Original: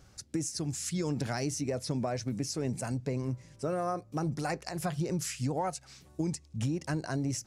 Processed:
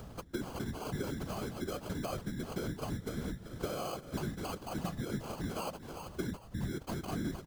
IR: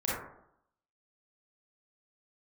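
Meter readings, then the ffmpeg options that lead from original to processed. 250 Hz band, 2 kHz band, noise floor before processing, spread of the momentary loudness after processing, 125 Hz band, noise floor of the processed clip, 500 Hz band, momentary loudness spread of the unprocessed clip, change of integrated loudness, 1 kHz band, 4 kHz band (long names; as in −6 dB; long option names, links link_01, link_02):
−5.0 dB, −3.5 dB, −58 dBFS, 3 LU, −6.5 dB, −52 dBFS, −5.0 dB, 3 LU, −5.5 dB, −5.0 dB, −4.5 dB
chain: -filter_complex "[0:a]acrossover=split=130|610|5500[link_01][link_02][link_03][link_04];[link_04]aeval=exprs='(mod(66.8*val(0)+1,2)-1)/66.8':channel_layout=same[link_05];[link_01][link_02][link_03][link_05]amix=inputs=4:normalize=0,bandreject=frequency=6300:width=8,aecho=1:1:386|772|1158|1544:0.1|0.05|0.025|0.0125,acompressor=threshold=-40dB:ratio=5,acrusher=samples=24:mix=1:aa=0.000001,equalizer=frequency=2300:width_type=o:width=0.45:gain=-6,afftfilt=real='hypot(re,im)*cos(2*PI*random(0))':imag='hypot(re,im)*sin(2*PI*random(1))':win_size=512:overlap=0.75,aeval=exprs='val(0)+0.000141*(sin(2*PI*60*n/s)+sin(2*PI*2*60*n/s)/2+sin(2*PI*3*60*n/s)/3+sin(2*PI*4*60*n/s)/4+sin(2*PI*5*60*n/s)/5)':channel_layout=same,acompressor=mode=upward:threshold=-51dB:ratio=2.5,volume=10.5dB"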